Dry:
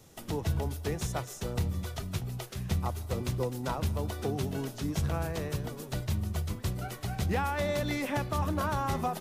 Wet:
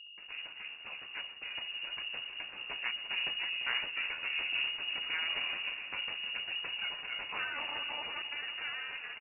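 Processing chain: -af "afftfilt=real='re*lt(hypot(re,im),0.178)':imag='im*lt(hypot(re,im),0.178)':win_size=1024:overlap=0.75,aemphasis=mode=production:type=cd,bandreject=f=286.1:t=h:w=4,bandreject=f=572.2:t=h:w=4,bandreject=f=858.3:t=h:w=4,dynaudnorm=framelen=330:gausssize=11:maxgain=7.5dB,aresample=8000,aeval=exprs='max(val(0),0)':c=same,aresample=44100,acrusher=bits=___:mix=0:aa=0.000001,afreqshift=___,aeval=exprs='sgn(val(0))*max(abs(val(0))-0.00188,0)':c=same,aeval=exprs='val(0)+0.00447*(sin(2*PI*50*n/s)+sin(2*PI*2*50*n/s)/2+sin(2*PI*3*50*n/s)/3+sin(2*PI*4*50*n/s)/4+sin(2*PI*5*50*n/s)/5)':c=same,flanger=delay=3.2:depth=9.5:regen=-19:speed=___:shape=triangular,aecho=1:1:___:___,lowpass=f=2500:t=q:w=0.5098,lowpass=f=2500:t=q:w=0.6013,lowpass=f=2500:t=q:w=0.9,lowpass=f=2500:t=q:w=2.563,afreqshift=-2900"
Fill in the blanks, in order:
7, -34, 0.6, 344, 0.237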